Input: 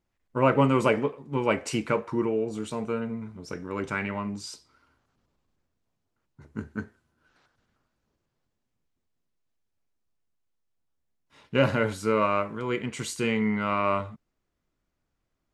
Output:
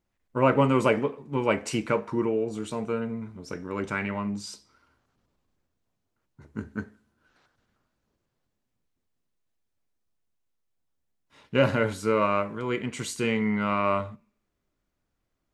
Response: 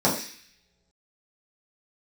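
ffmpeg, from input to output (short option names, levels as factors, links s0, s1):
-filter_complex "[0:a]asplit=2[s0][s1];[1:a]atrim=start_sample=2205[s2];[s1][s2]afir=irnorm=-1:irlink=0,volume=0.0133[s3];[s0][s3]amix=inputs=2:normalize=0"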